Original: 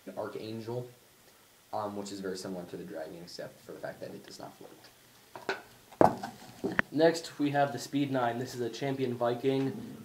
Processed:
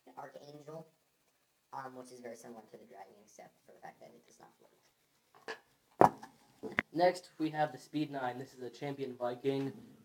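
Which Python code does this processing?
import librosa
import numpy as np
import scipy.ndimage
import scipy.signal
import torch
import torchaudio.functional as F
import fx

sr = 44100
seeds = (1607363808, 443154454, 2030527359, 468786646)

y = fx.pitch_glide(x, sr, semitones=5.0, runs='ending unshifted')
y = fx.upward_expand(y, sr, threshold_db=-46.0, expansion=1.5)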